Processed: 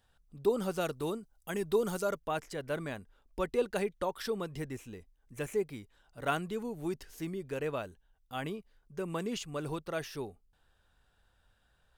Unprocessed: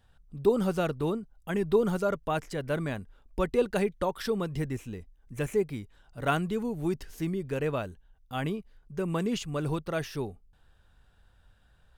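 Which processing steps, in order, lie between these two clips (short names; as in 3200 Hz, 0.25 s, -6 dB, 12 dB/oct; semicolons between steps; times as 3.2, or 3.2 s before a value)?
tone controls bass -6 dB, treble +4 dB, from 0.8 s treble +10 dB, from 2.18 s treble +2 dB; gain -4 dB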